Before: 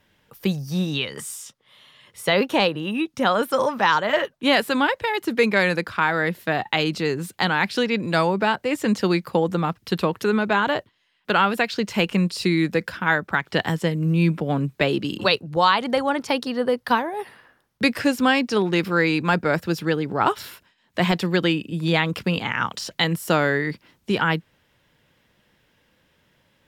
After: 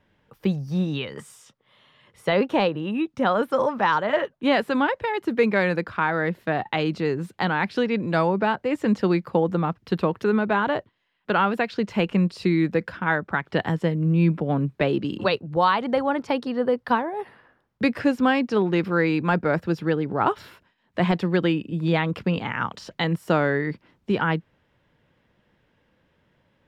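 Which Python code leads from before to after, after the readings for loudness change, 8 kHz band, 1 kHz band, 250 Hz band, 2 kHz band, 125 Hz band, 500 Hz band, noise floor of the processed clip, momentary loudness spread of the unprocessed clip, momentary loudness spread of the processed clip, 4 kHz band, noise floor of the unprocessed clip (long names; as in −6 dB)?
−1.5 dB, below −10 dB, −1.5 dB, 0.0 dB, −4.0 dB, 0.0 dB, −0.5 dB, −68 dBFS, 7 LU, 6 LU, −8.0 dB, −66 dBFS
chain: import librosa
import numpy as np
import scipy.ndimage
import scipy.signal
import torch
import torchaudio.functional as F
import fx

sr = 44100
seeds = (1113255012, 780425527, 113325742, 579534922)

y = fx.lowpass(x, sr, hz=1400.0, slope=6)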